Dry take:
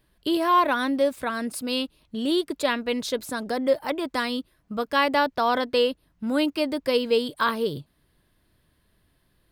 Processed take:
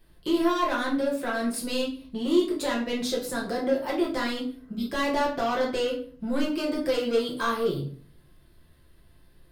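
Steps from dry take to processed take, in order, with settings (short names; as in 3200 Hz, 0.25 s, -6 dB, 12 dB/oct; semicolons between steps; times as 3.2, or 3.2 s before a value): 0.98–1.6 HPF 170 Hz 12 dB/oct; 4.55–4.82 spectral repair 420–2100 Hz; in parallel at +2.5 dB: compressor, threshold -32 dBFS, peak gain reduction 15.5 dB; on the sum: soft clip -17.5 dBFS, distortion -13 dB; reverb RT60 0.45 s, pre-delay 6 ms, DRR -3.5 dB; gain -8 dB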